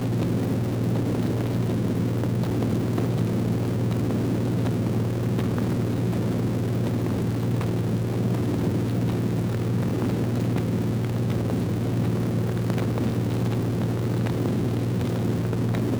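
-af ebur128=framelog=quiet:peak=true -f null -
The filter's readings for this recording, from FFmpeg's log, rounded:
Integrated loudness:
  I:         -25.0 LUFS
  Threshold: -35.0 LUFS
Loudness range:
  LRA:         0.4 LU
  Threshold: -45.0 LUFS
  LRA low:   -25.2 LUFS
  LRA high:  -24.8 LUFS
True peak:
  Peak:       -9.7 dBFS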